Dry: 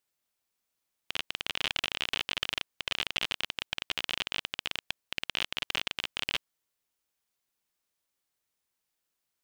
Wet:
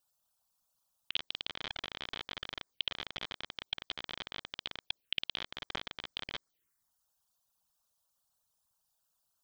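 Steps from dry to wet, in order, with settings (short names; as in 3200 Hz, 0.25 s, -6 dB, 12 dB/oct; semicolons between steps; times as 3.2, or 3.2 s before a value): formant sharpening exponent 2; envelope phaser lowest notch 360 Hz, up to 2800 Hz, full sweep at -34 dBFS; gain +4.5 dB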